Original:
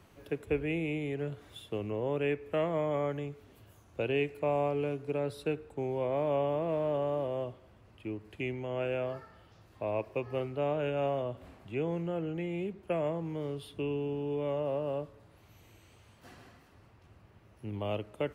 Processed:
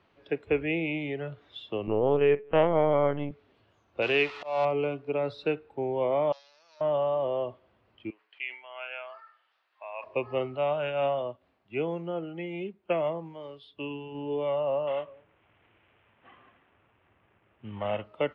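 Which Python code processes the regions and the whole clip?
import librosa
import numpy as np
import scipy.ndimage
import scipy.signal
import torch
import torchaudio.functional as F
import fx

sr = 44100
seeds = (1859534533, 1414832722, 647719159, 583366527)

y = fx.chain(x, sr, fx.low_shelf(hz=490.0, db=7.5),
    fx.lpc_vocoder(seeds[0], excitation='pitch_kept', order=10), at=(1.87, 3.31))
y = fx.chain(y, sr, fx.zero_step(step_db=-39.5),
    fx.tilt_shelf(db=-3.5, hz=800.0),
    fx.auto_swell(attack_ms=190.0), at=(4.02, 4.65))
y = fx.chain(y, sr, fx.leveller(passes=3),
    fx.bandpass_q(hz=5800.0, q=5.9), at=(6.32, 6.81))
y = fx.chain(y, sr, fx.highpass(hz=1300.0, slope=12),
    fx.high_shelf(hz=4200.0, db=-8.5),
    fx.sustainer(db_per_s=100.0), at=(8.1, 10.04))
y = fx.chain(y, sr, fx.high_shelf(hz=6100.0, db=8.0),
    fx.upward_expand(threshold_db=-51.0, expansion=1.5), at=(10.57, 14.15))
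y = fx.chain(y, sr, fx.cvsd(bps=16000),
    fx.echo_single(ms=203, db=-20.5), at=(14.87, 18.04))
y = fx.low_shelf(y, sr, hz=200.0, db=-11.5)
y = fx.noise_reduce_blind(y, sr, reduce_db=10)
y = scipy.signal.sosfilt(scipy.signal.butter(4, 4200.0, 'lowpass', fs=sr, output='sos'), y)
y = y * 10.0 ** (7.0 / 20.0)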